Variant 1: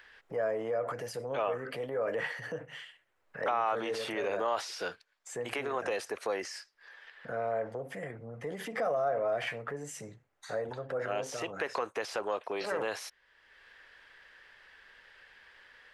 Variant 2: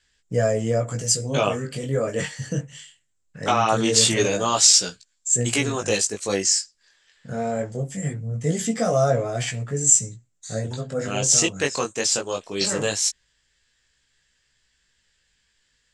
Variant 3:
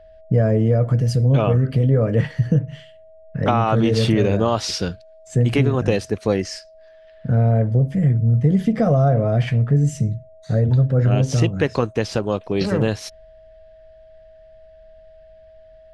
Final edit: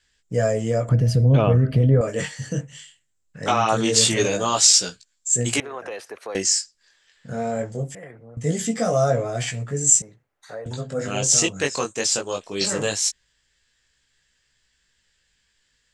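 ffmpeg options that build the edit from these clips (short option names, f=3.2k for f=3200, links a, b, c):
-filter_complex "[0:a]asplit=3[a][b][c];[1:a]asplit=5[d][e][f][g][h];[d]atrim=end=0.892[i];[2:a]atrim=start=0.888:end=2.012[j];[e]atrim=start=2.008:end=5.602[k];[a]atrim=start=5.598:end=6.352[l];[f]atrim=start=6.348:end=7.952[m];[b]atrim=start=7.948:end=8.372[n];[g]atrim=start=8.368:end=10.022[o];[c]atrim=start=10.018:end=10.662[p];[h]atrim=start=10.658[q];[i][j]acrossfade=d=0.004:c1=hsin:c2=hsin[r];[r][k]acrossfade=d=0.004:c1=hsin:c2=hsin[s];[s][l]acrossfade=d=0.004:c1=hsin:c2=hsin[t];[t][m]acrossfade=d=0.004:c1=hsin:c2=hsin[u];[u][n]acrossfade=d=0.004:c1=hsin:c2=hsin[v];[v][o]acrossfade=d=0.004:c1=hsin:c2=hsin[w];[w][p]acrossfade=d=0.004:c1=hsin:c2=hsin[x];[x][q]acrossfade=d=0.004:c1=hsin:c2=hsin"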